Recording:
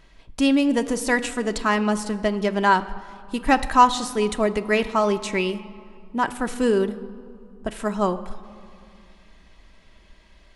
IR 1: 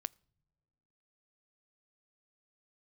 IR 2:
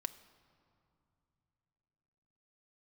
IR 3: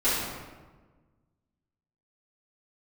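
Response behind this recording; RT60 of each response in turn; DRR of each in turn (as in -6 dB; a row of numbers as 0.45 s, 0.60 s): 2; no single decay rate, 2.6 s, 1.3 s; 22.0 dB, 7.0 dB, -15.0 dB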